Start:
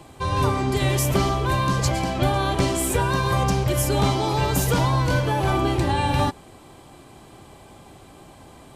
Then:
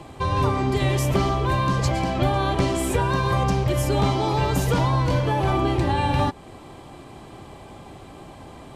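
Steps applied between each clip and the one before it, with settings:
low-pass filter 3,800 Hz 6 dB per octave
notch filter 1,500 Hz, Q 22
in parallel at +3 dB: downward compressor, threshold −29 dBFS, peak gain reduction 12.5 dB
on the sum: level −3 dB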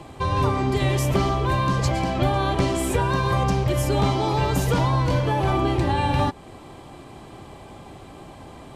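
no processing that can be heard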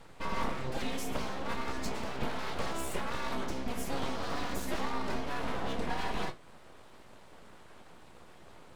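resonators tuned to a chord E2 major, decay 0.22 s
full-wave rectification

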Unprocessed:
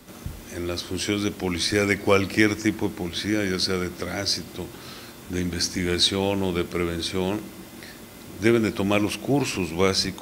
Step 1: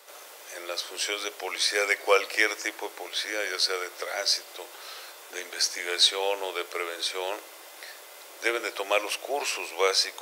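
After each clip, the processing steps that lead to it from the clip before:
Butterworth high-pass 470 Hz 36 dB per octave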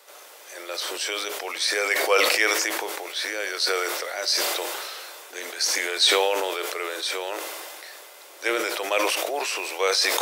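level that may fall only so fast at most 24 dB per second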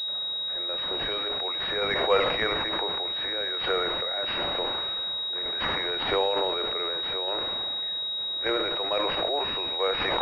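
shaped tremolo saw down 1.1 Hz, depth 35%
switching amplifier with a slow clock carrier 3,800 Hz

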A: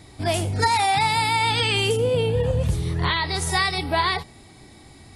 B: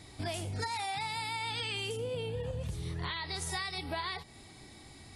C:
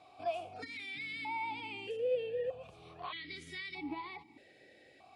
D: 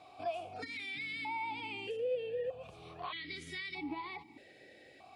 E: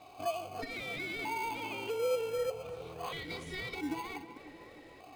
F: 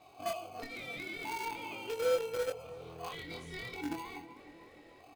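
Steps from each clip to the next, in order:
parametric band 4,700 Hz +4 dB 3 octaves; downward compressor 5 to 1, threshold −28 dBFS, peak gain reduction 12.5 dB; level −6.5 dB
formant filter that steps through the vowels 1.6 Hz; level +8 dB
downward compressor 1.5 to 1, threshold −44 dBFS, peak gain reduction 6 dB; level +3 dB
in parallel at −4 dB: decimation without filtering 24×; on the sum: tape delay 312 ms, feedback 68%, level −11.5 dB, low-pass 2,400 Hz
in parallel at −7.5 dB: bit reduction 5 bits; on the sum: double-tracking delay 24 ms −4 dB; level −5 dB

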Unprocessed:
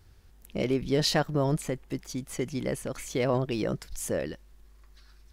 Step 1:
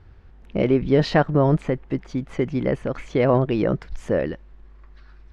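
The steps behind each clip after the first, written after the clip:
low-pass filter 2,100 Hz 12 dB per octave
level +8.5 dB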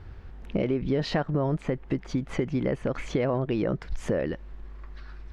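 in parallel at −2.5 dB: brickwall limiter −14 dBFS, peak gain reduction 7.5 dB
on the sum: downward compressor 4 to 1, threshold −25 dBFS, peak gain reduction 13 dB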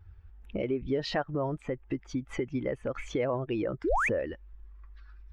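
spectral dynamics exaggerated over time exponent 1.5
parametric band 170 Hz −9.5 dB 0.75 octaves
sound drawn into the spectrogram rise, 0:03.84–0:04.09, 280–2,700 Hz −27 dBFS

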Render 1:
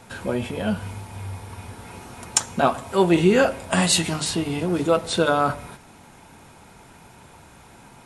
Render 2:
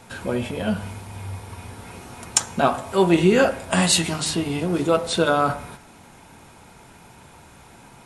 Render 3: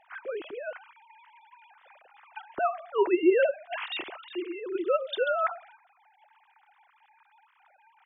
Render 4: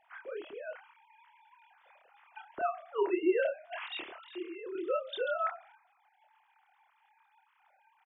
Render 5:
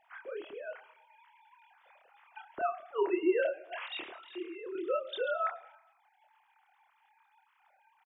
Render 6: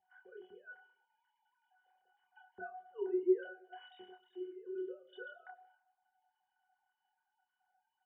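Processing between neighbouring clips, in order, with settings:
hum removal 51.11 Hz, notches 39; level +1 dB
three sine waves on the formant tracks; level −8 dB
double-tracking delay 27 ms −4 dB; level −7.5 dB
repeating echo 107 ms, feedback 57%, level −23.5 dB
resonances in every octave F#, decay 0.15 s; level +1.5 dB

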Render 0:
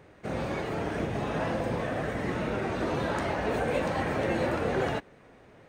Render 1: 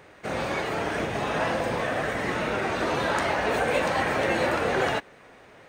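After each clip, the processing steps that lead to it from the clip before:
low-shelf EQ 480 Hz −11 dB
level +8.5 dB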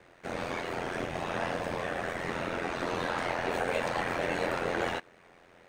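ring modulation 43 Hz
level −3.5 dB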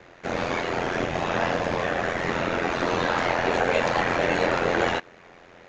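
downsampling to 16,000 Hz
level +8 dB

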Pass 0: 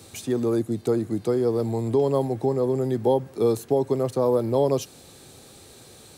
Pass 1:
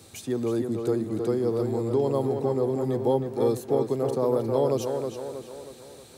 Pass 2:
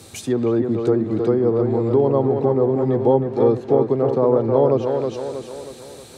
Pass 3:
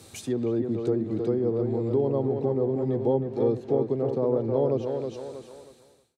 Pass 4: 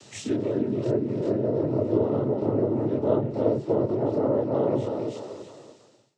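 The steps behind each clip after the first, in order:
tape delay 317 ms, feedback 53%, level −4 dB, low-pass 3,300 Hz; level −3.5 dB
treble cut that deepens with the level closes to 1,900 Hz, closed at −21.5 dBFS; level +7.5 dB
fade-out on the ending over 1.24 s; dynamic equaliser 1,200 Hz, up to −8 dB, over −36 dBFS, Q 0.97; level −6.5 dB
every bin's largest magnitude spread in time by 60 ms; cochlear-implant simulation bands 12; level −1.5 dB

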